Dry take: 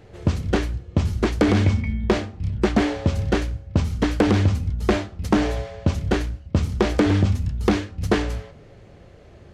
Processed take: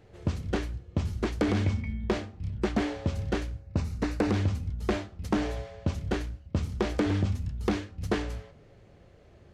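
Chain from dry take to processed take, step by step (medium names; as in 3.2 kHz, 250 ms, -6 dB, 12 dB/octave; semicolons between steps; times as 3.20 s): 3.60–4.32 s: band-stop 3.2 kHz, Q 5.2; trim -8.5 dB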